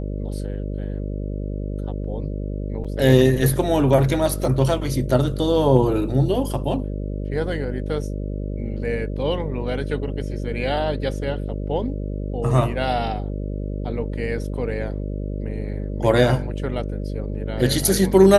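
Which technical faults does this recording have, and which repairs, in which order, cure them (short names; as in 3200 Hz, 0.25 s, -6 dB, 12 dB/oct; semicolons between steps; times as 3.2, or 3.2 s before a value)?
buzz 50 Hz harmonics 12 -27 dBFS
2.84–2.85 gap 6 ms
4.44 gap 2.4 ms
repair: de-hum 50 Hz, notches 12; interpolate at 2.84, 6 ms; interpolate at 4.44, 2.4 ms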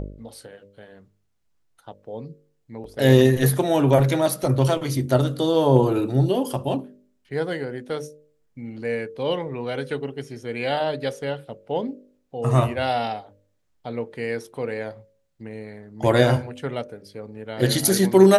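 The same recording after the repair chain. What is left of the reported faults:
none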